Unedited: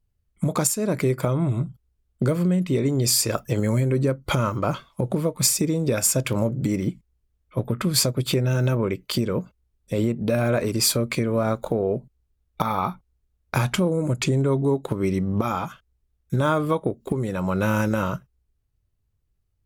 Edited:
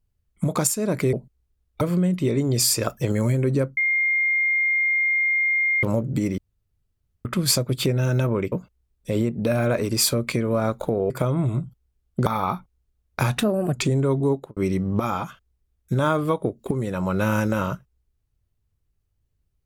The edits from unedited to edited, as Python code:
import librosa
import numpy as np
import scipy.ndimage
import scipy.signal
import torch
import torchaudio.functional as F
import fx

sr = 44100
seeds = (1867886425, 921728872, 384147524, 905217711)

y = fx.studio_fade_out(x, sr, start_s=14.73, length_s=0.25)
y = fx.edit(y, sr, fx.swap(start_s=1.13, length_s=1.16, other_s=11.93, other_length_s=0.68),
    fx.bleep(start_s=4.25, length_s=2.06, hz=2120.0, db=-18.0),
    fx.room_tone_fill(start_s=6.86, length_s=0.87),
    fx.cut(start_s=9.0, length_s=0.35),
    fx.speed_span(start_s=13.72, length_s=0.42, speed=1.18), tone=tone)